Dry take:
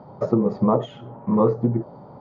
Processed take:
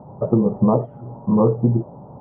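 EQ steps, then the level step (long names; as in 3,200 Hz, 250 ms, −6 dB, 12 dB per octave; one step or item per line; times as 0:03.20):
transistor ladder low-pass 1,200 Hz, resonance 30%
high-frequency loss of the air 310 metres
low-shelf EQ 190 Hz +9.5 dB
+6.0 dB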